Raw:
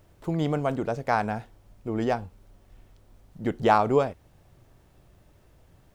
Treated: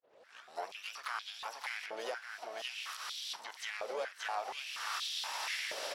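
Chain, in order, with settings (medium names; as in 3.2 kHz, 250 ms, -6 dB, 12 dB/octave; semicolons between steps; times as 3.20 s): tape start-up on the opening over 0.94 s; recorder AGC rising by 29 dB/s; brick-wall FIR low-pass 6 kHz; feedback delay 577 ms, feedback 18%, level -7.5 dB; harmony voices +12 st -14 dB; compression 20:1, threshold -27 dBFS, peak gain reduction 14.5 dB; differentiator; peak limiter -41 dBFS, peak gain reduction 10 dB; harmony voices -12 st -11 dB, +5 st -10 dB; step-sequenced high-pass 4.2 Hz 530–3500 Hz; trim +10.5 dB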